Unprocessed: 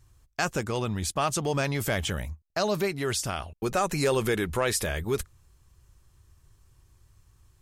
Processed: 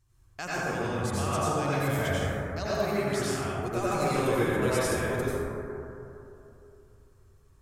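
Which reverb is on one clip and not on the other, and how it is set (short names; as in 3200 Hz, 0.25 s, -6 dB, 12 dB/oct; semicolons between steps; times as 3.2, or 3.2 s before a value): plate-style reverb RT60 3 s, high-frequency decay 0.25×, pre-delay 75 ms, DRR -9.5 dB; gain -10.5 dB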